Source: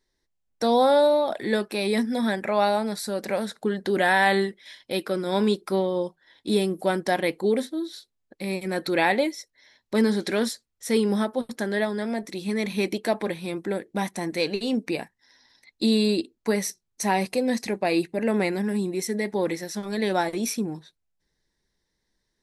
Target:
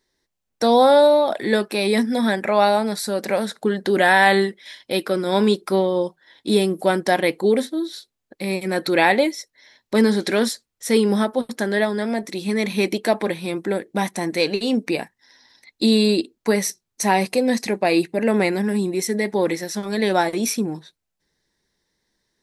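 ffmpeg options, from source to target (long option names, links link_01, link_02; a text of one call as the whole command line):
ffmpeg -i in.wav -af "lowshelf=frequency=72:gain=-10.5,volume=5.5dB" out.wav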